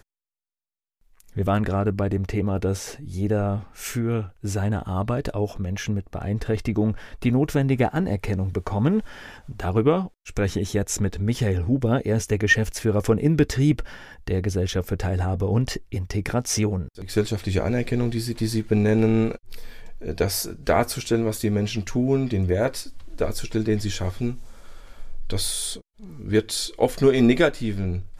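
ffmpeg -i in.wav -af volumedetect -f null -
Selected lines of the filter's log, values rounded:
mean_volume: -23.7 dB
max_volume: -6.1 dB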